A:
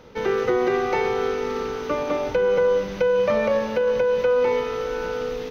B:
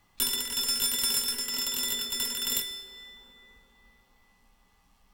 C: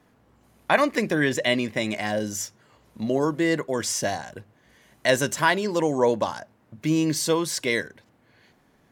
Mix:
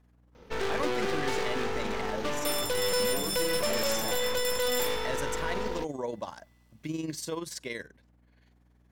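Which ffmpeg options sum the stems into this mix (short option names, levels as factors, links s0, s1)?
-filter_complex "[0:a]aeval=exprs='0.316*(cos(1*acos(clip(val(0)/0.316,-1,1)))-cos(1*PI/2))+0.0708*(cos(3*acos(clip(val(0)/0.316,-1,1)))-cos(3*PI/2))+0.0282*(cos(8*acos(clip(val(0)/0.316,-1,1)))-cos(8*PI/2))':c=same,volume=23.7,asoftclip=hard,volume=0.0422,adelay=350,volume=1.33[s0];[1:a]tiltshelf=f=970:g=-7,adelay=2250,volume=0.335[s1];[2:a]tremolo=f=21:d=0.667,volume=0.376[s2];[s1][s2]amix=inputs=2:normalize=0,aeval=exprs='val(0)+0.000794*(sin(2*PI*60*n/s)+sin(2*PI*2*60*n/s)/2+sin(2*PI*3*60*n/s)/3+sin(2*PI*4*60*n/s)/4+sin(2*PI*5*60*n/s)/5)':c=same,alimiter=limit=0.0631:level=0:latency=1:release=14,volume=1[s3];[s0][s3]amix=inputs=2:normalize=0"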